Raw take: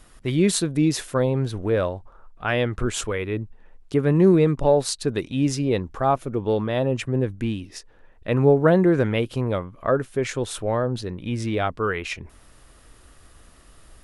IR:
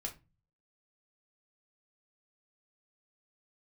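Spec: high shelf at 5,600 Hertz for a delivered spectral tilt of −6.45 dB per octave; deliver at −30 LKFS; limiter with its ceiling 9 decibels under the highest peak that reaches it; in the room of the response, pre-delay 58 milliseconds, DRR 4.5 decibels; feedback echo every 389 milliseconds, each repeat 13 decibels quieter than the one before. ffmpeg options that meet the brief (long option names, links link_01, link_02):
-filter_complex "[0:a]highshelf=frequency=5600:gain=-8.5,alimiter=limit=-14.5dB:level=0:latency=1,aecho=1:1:389|778|1167:0.224|0.0493|0.0108,asplit=2[link_01][link_02];[1:a]atrim=start_sample=2205,adelay=58[link_03];[link_02][link_03]afir=irnorm=-1:irlink=0,volume=-3.5dB[link_04];[link_01][link_04]amix=inputs=2:normalize=0,volume=-6dB"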